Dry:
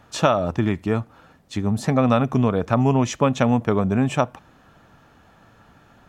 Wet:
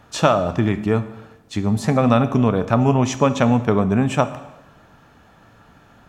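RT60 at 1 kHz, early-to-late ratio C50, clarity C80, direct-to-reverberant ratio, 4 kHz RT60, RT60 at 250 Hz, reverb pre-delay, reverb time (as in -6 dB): 0.95 s, 13.5 dB, 15.5 dB, 11.0 dB, 0.95 s, 1.0 s, 5 ms, 1.0 s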